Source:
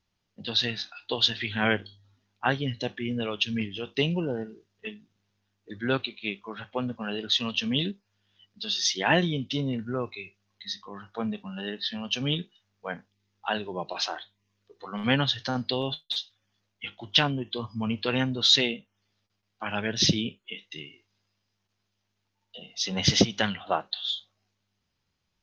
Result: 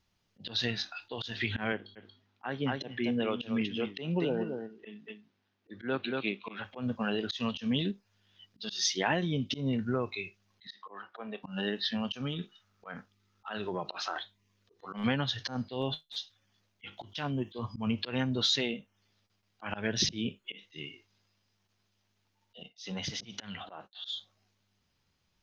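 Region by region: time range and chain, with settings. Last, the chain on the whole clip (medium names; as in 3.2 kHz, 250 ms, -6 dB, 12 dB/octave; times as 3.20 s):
1.72–6.65 s: high-pass 170 Hz + distance through air 150 m + delay 232 ms -9.5 dB
10.67–11.43 s: high-pass 160 Hz 6 dB/octave + three-band isolator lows -22 dB, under 310 Hz, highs -23 dB, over 3.3 kHz
12.16–14.16 s: peaking EQ 1.3 kHz +13 dB 0.27 oct + compression 5:1, threshold -32 dBFS
16.97–17.59 s: high-pass 47 Hz + treble shelf 6 kHz +7.5 dB
22.63–23.95 s: expander -43 dBFS + compression 4:1, threshold -38 dBFS
whole clip: dynamic bell 3.5 kHz, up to -4 dB, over -40 dBFS, Q 1; compression 6:1, threshold -28 dBFS; slow attack 128 ms; trim +2.5 dB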